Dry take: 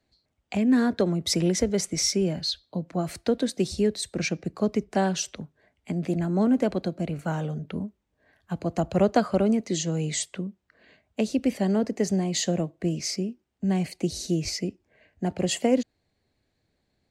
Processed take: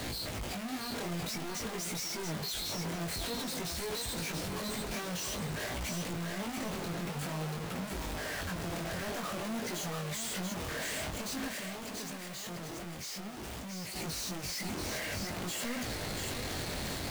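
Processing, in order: one-bit comparator; chorus 0.51 Hz, delay 16.5 ms, depth 7.1 ms; 11.49–13.96 s: overload inside the chain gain 32.5 dB; thinning echo 685 ms, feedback 35%, high-pass 480 Hz, level -4 dB; trim -8 dB

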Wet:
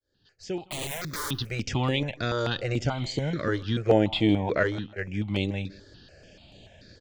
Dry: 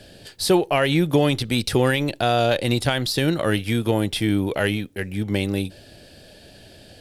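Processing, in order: fade-in on the opening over 1.71 s; elliptic low-pass 7 kHz, stop band 40 dB; 0.61–1.31 s: integer overflow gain 23.5 dB; 2.88–3.35 s: spectral replace 1.6–4.1 kHz after; 3.89–4.63 s: peaking EQ 730 Hz +13 dB 1.6 oct; feedback delay 160 ms, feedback 31%, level -22 dB; stepped phaser 6.9 Hz 710–5300 Hz; trim -2 dB

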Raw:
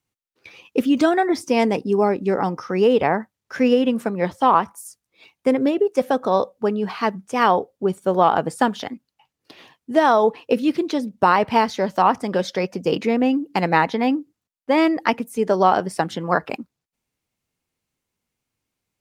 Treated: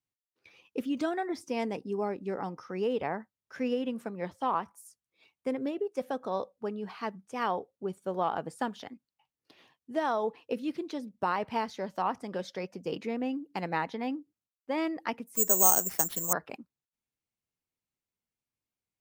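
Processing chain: 15.35–16.33 s: careless resampling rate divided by 6×, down none, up zero stuff; trim -14 dB

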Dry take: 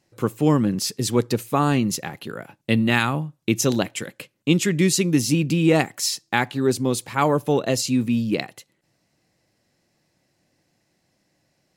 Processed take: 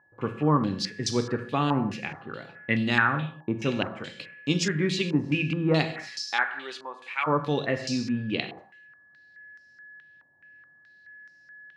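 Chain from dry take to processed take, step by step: 6.25–7.26 s: high-pass 600 Hz -> 1.5 kHz 12 dB/octave; gated-style reverb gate 280 ms falling, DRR 6.5 dB; whistle 1.7 kHz -47 dBFS; step-sequenced low-pass 4.7 Hz 950–5300 Hz; trim -7.5 dB

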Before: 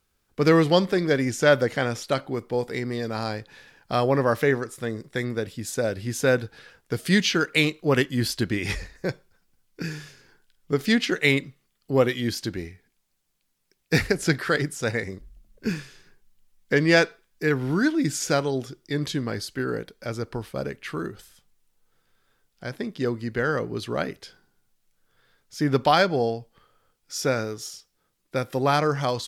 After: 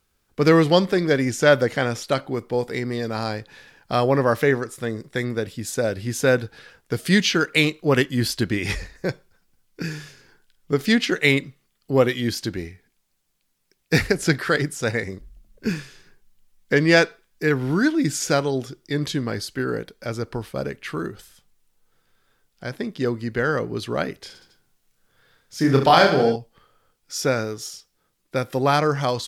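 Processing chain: 24.18–26.36 s: reverse bouncing-ball echo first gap 30 ms, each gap 1.3×, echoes 5; trim +2.5 dB

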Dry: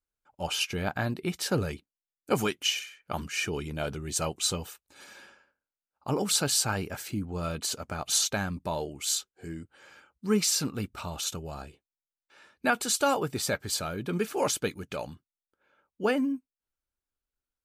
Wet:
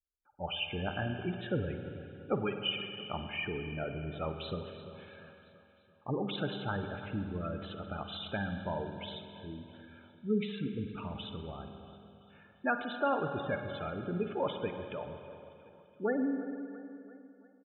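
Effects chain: resampled via 8 kHz; on a send: feedback delay 340 ms, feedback 54%, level -15.5 dB; on the sum: spectral gate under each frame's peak -15 dB strong; spring tank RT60 2.7 s, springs 45/50 ms, chirp 25 ms, DRR 6 dB; trim -5 dB

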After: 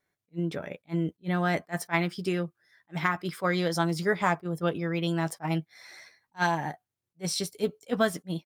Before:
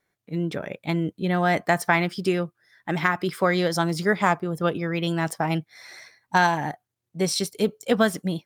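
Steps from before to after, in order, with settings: doubling 12 ms -10 dB; attacks held to a fixed rise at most 480 dB/s; trim -5 dB

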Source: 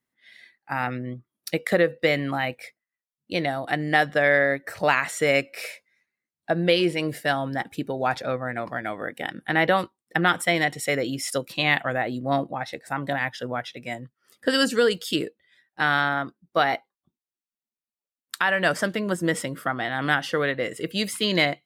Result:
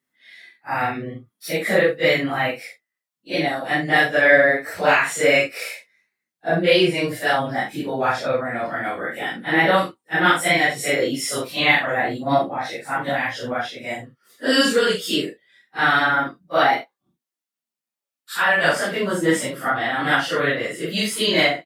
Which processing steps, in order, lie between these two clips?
phase randomisation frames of 100 ms; bass shelf 110 Hz -12 dB; doubling 43 ms -6 dB; trim +4 dB

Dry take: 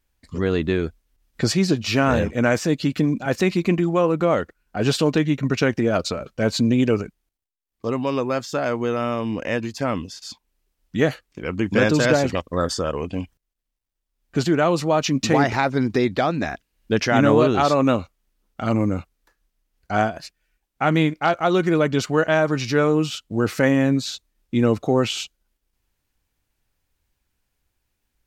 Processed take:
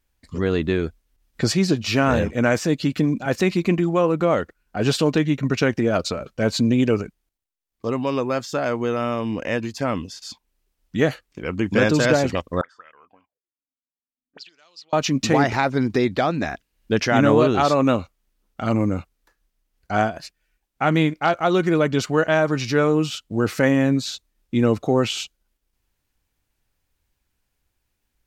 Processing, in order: 12.61–14.93 s: auto-wah 250–5000 Hz, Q 13, up, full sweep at -16.5 dBFS

